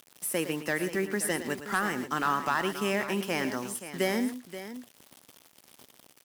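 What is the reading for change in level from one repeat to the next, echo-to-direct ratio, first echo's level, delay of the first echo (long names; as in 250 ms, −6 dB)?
repeats not evenly spaced, −9.0 dB, −11.5 dB, 112 ms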